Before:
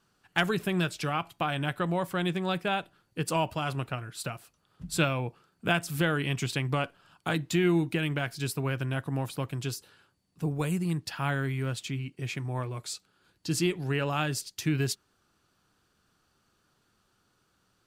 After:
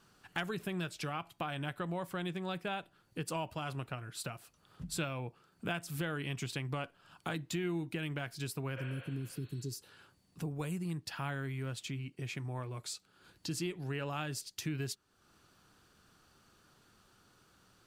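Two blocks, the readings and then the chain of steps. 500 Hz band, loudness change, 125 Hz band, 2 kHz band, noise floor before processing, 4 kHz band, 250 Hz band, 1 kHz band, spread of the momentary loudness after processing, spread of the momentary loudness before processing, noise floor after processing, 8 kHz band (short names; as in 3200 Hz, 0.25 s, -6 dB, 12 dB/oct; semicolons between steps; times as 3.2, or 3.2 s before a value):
-9.5 dB, -9.0 dB, -8.5 dB, -9.5 dB, -72 dBFS, -8.5 dB, -9.0 dB, -9.0 dB, 6 LU, 9 LU, -71 dBFS, -6.5 dB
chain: spectral repair 8.79–9.72, 450–4400 Hz both; compressor 2:1, threshold -52 dBFS, peak gain reduction 17 dB; gain +5 dB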